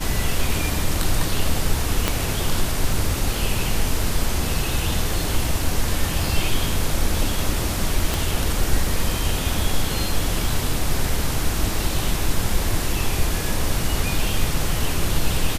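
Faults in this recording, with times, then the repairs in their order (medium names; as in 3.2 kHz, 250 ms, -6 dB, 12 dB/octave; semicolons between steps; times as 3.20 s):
2.08 s: pop -3 dBFS
8.14 s: pop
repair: de-click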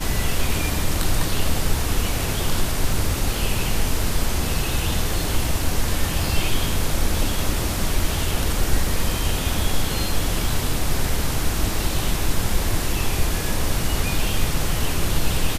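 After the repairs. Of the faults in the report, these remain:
2.08 s: pop
8.14 s: pop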